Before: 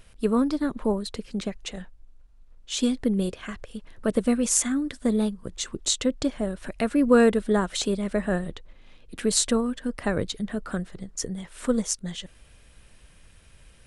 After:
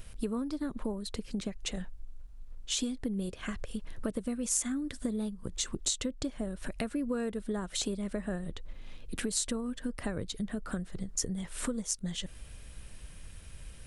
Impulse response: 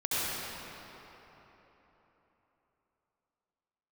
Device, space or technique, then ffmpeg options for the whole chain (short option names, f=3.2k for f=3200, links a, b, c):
ASMR close-microphone chain: -af "lowshelf=f=210:g=7,acompressor=threshold=-32dB:ratio=6,highshelf=f=6.2k:g=7"